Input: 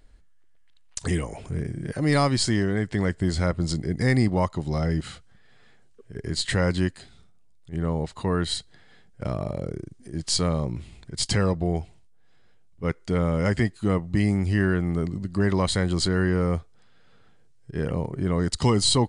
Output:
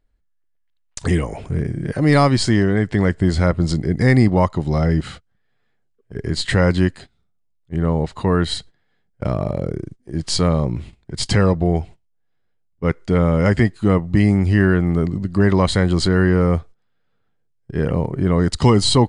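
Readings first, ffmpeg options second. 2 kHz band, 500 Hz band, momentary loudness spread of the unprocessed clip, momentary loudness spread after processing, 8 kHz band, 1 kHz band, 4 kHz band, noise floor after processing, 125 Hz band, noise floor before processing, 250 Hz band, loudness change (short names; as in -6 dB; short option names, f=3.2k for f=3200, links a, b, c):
+6.5 dB, +7.5 dB, 11 LU, 12 LU, +0.5 dB, +7.0 dB, +3.5 dB, -65 dBFS, +7.5 dB, -53 dBFS, +7.5 dB, +7.0 dB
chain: -af "agate=range=-20dB:threshold=-41dB:ratio=16:detection=peak,highshelf=f=4.5k:g=-9,volume=7.5dB"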